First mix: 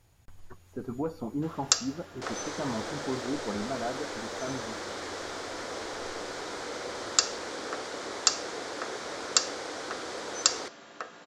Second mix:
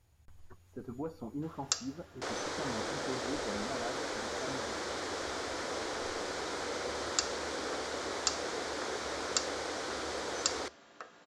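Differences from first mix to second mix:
speech -7.0 dB; first sound -8.5 dB; master: add peaking EQ 71 Hz +13 dB 0.34 oct

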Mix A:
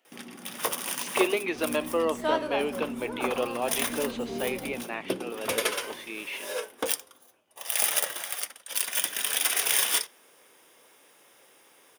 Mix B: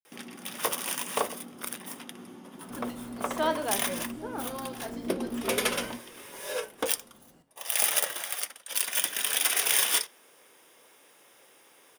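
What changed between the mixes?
speech: muted; second sound: entry +1.15 s

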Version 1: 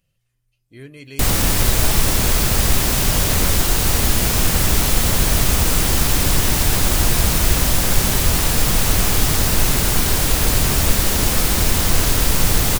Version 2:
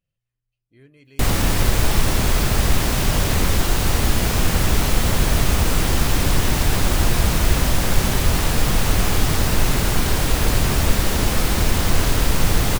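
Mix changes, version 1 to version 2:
speech -11.5 dB; master: add treble shelf 4.6 kHz -8.5 dB

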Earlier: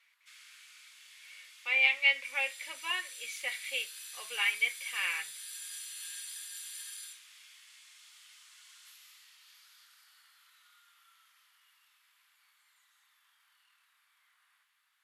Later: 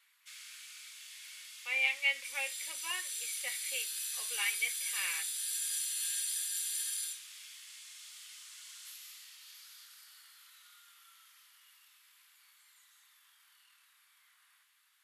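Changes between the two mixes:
speech -5.0 dB; background: add treble shelf 3.4 kHz +9.5 dB

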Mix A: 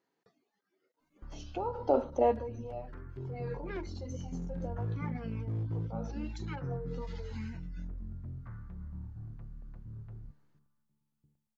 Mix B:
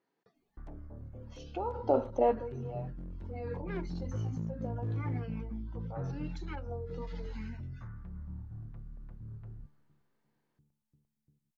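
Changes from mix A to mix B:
speech: add distance through air 79 m; background: entry -0.65 s

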